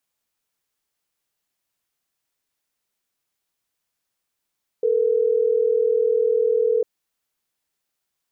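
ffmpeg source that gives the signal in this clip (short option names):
-f lavfi -i "aevalsrc='0.112*(sin(2*PI*440*t)+sin(2*PI*480*t))*clip(min(mod(t,6),2-mod(t,6))/0.005,0,1)':d=3.12:s=44100"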